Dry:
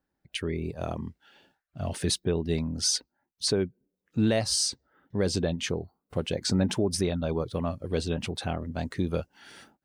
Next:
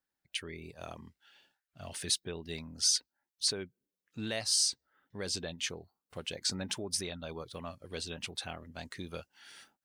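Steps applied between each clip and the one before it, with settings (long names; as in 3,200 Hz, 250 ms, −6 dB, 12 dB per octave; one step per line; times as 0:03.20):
tilt shelving filter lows −7.5 dB
level −8.5 dB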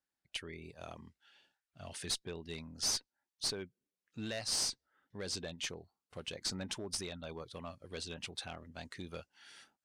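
asymmetric clip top −31 dBFS
low-pass filter 10,000 Hz 12 dB per octave
level −3 dB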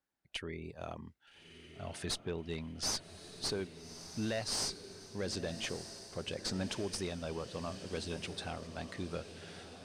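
high-shelf EQ 2,300 Hz −9 dB
feedback delay with all-pass diffusion 1,250 ms, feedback 57%, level −11 dB
level +5.5 dB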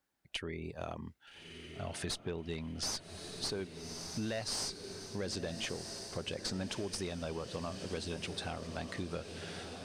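downward compressor 2.5 to 1, threshold −43 dBFS, peak gain reduction 8.5 dB
level +5.5 dB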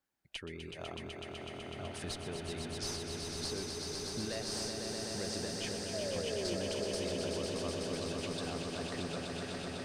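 sound drawn into the spectrogram fall, 0:05.93–0:06.56, 330–670 Hz −36 dBFS
on a send: echo that builds up and dies away 125 ms, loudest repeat 5, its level −6 dB
on the sum: level −4 dB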